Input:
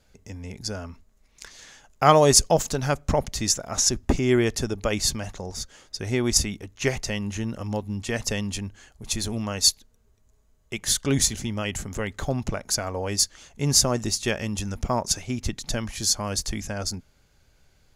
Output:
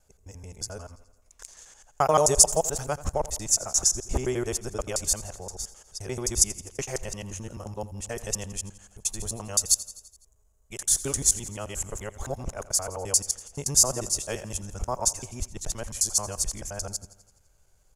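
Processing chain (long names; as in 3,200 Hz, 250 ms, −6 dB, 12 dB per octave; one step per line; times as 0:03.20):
reversed piece by piece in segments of 87 ms
octave-band graphic EQ 125/250/2,000/4,000/8,000 Hz −5/−11/−8/−10/+8 dB
on a send: repeating echo 84 ms, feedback 60%, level −17.5 dB
on the sum: level −1.5 dB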